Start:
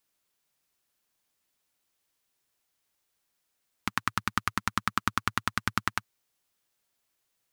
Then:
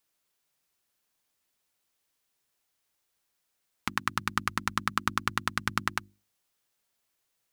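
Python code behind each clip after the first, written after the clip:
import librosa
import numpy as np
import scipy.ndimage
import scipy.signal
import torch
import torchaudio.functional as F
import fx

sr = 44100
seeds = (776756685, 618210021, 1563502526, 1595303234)

y = fx.hum_notches(x, sr, base_hz=50, count=7)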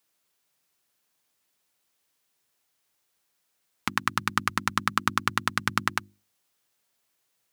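y = scipy.signal.sosfilt(scipy.signal.butter(2, 82.0, 'highpass', fs=sr, output='sos'), x)
y = F.gain(torch.from_numpy(y), 3.5).numpy()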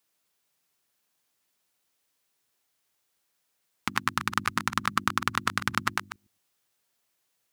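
y = fx.reverse_delay(x, sr, ms=112, wet_db=-10.5)
y = F.gain(torch.from_numpy(y), -1.5).numpy()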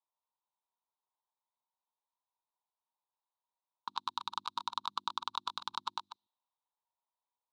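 y = fx.double_bandpass(x, sr, hz=1900.0, octaves=2.0)
y = fx.env_lowpass(y, sr, base_hz=1300.0, full_db=-40.0)
y = F.gain(torch.from_numpy(y), 1.0).numpy()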